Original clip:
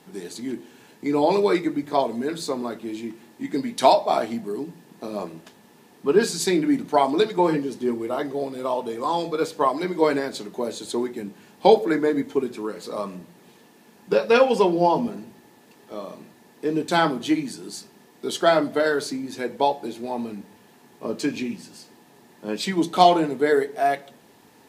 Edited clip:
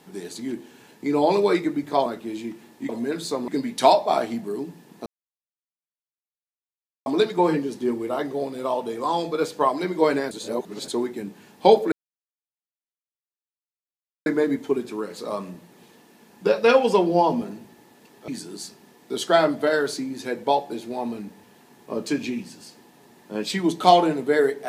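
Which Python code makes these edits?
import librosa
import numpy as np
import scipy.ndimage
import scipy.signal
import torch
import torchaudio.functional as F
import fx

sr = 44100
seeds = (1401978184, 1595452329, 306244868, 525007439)

y = fx.edit(x, sr, fx.move(start_s=2.06, length_s=0.59, to_s=3.48),
    fx.silence(start_s=5.06, length_s=2.0),
    fx.reverse_span(start_s=10.31, length_s=0.57),
    fx.insert_silence(at_s=11.92, length_s=2.34),
    fx.cut(start_s=15.94, length_s=1.47), tone=tone)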